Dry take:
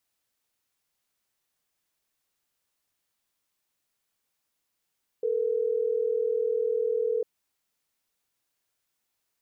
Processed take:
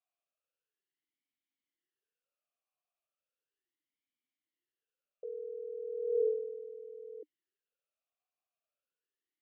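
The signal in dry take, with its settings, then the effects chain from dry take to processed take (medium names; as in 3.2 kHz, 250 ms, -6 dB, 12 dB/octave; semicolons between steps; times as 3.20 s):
call progress tone ringback tone, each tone -26.5 dBFS
talking filter a-i 0.36 Hz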